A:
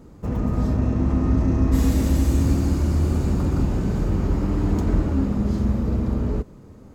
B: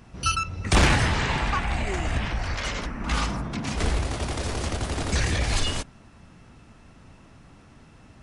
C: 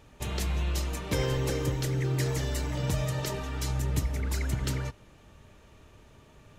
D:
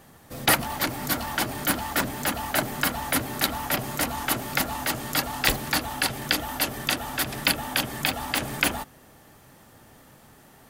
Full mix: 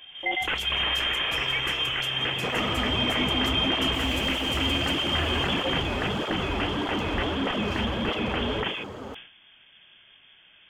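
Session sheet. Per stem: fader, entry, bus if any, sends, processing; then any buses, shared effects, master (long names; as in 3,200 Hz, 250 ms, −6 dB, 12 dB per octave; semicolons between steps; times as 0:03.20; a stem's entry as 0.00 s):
−7.0 dB, 2.20 s, no bus, no send, parametric band 180 Hz −7.5 dB 2.7 octaves; mid-hump overdrive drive 39 dB, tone 1,200 Hz, clips at −11 dBFS; through-zero flanger with one copy inverted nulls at 1.6 Hz, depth 6.8 ms
−1.5 dB, 0.00 s, bus A, no send, Butterworth high-pass 160 Hz 72 dB per octave; parametric band 230 Hz +14.5 dB 0.23 octaves; notch filter 1,900 Hz
−12.5 dB, 0.20 s, no bus, no send, parametric band 12,000 Hz +7.5 dB 2.8 octaves
−2.5 dB, 0.00 s, bus A, no send, no processing
bus A: 0.0 dB, voice inversion scrambler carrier 3,400 Hz; brickwall limiter −17.5 dBFS, peak gain reduction 10.5 dB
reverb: not used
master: level that may fall only so fast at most 95 dB per second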